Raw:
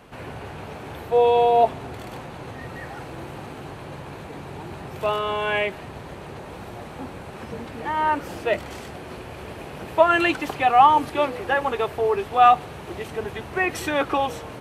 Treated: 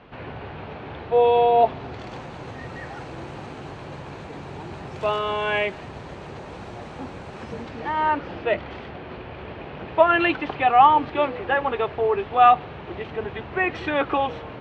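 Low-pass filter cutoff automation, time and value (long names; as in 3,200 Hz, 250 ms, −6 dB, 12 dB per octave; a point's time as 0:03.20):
low-pass filter 24 dB per octave
0:01.56 3,900 Hz
0:02.27 7,300 Hz
0:07.56 7,300 Hz
0:08.33 3,600 Hz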